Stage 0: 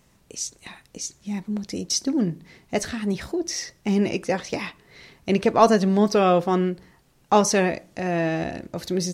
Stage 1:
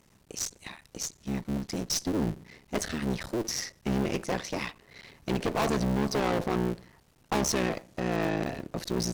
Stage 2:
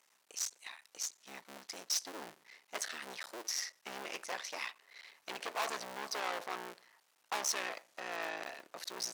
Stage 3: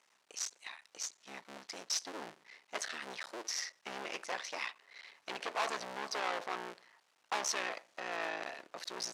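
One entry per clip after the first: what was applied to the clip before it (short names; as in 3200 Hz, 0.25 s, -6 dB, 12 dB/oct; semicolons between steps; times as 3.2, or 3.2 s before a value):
cycle switcher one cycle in 3, muted; tube stage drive 24 dB, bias 0.45; gain +1 dB
HPF 890 Hz 12 dB/oct; gain -4 dB
air absorption 53 m; gain +2 dB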